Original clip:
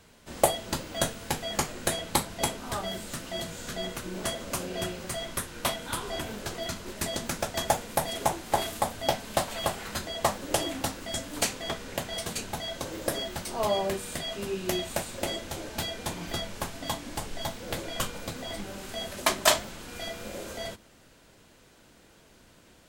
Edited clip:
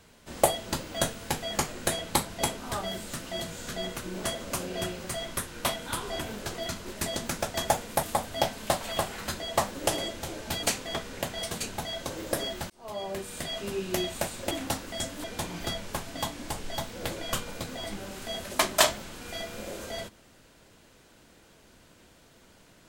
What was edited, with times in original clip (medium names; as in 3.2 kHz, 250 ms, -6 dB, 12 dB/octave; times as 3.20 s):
8.03–8.70 s: delete
10.65–11.38 s: swap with 15.26–15.91 s
13.45–14.26 s: fade in